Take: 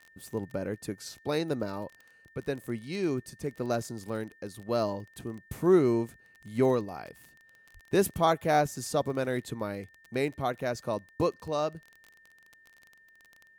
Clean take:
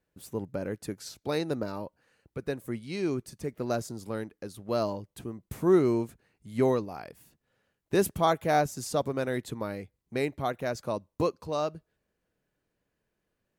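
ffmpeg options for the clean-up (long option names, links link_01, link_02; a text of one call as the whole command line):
ffmpeg -i in.wav -filter_complex "[0:a]adeclick=threshold=4,bandreject=frequency=1800:width=30,asplit=3[link_01][link_02][link_03];[link_01]afade=type=out:start_time=7.73:duration=0.02[link_04];[link_02]highpass=frequency=140:width=0.5412,highpass=frequency=140:width=1.3066,afade=type=in:start_time=7.73:duration=0.02,afade=type=out:start_time=7.85:duration=0.02[link_05];[link_03]afade=type=in:start_time=7.85:duration=0.02[link_06];[link_04][link_05][link_06]amix=inputs=3:normalize=0" out.wav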